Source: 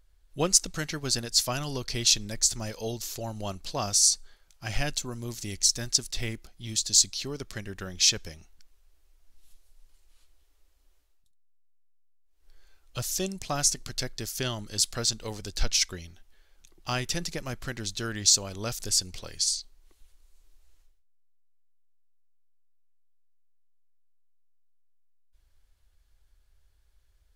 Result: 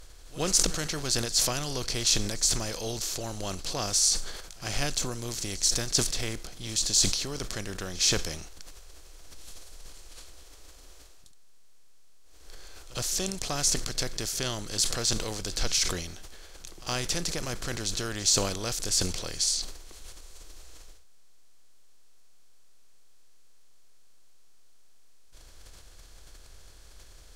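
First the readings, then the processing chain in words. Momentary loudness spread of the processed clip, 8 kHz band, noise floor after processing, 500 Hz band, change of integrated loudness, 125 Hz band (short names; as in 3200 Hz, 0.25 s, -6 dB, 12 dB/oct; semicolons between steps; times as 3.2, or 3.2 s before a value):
13 LU, -0.5 dB, -49 dBFS, +1.0 dB, -1.0 dB, 0.0 dB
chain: per-bin compression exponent 0.6; pre-echo 68 ms -20.5 dB; sustainer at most 55 dB/s; gain -5.5 dB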